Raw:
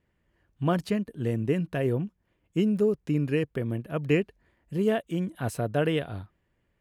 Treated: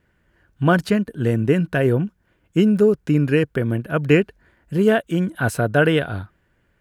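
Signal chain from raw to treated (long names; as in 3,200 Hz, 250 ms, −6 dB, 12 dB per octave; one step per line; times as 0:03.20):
parametric band 1,500 Hz +10.5 dB 0.24 octaves
level +8.5 dB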